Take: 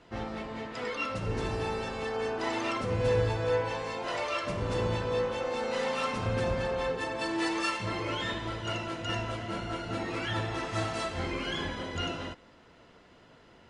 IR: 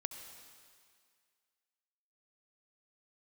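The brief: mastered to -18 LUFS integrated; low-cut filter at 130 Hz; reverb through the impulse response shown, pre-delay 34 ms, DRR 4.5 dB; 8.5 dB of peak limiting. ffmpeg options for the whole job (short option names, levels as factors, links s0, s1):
-filter_complex "[0:a]highpass=130,alimiter=level_in=1.26:limit=0.0631:level=0:latency=1,volume=0.794,asplit=2[s0][s1];[1:a]atrim=start_sample=2205,adelay=34[s2];[s1][s2]afir=irnorm=-1:irlink=0,volume=0.708[s3];[s0][s3]amix=inputs=2:normalize=0,volume=5.62"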